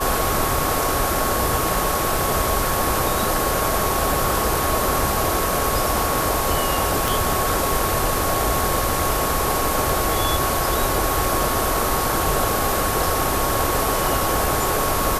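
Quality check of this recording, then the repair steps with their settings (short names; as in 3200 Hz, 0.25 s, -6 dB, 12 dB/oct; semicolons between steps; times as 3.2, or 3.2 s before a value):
tone 1100 Hz -26 dBFS
7.08 pop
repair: de-click; notch 1100 Hz, Q 30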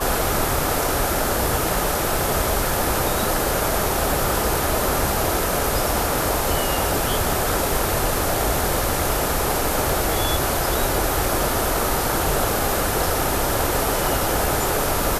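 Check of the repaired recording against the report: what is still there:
none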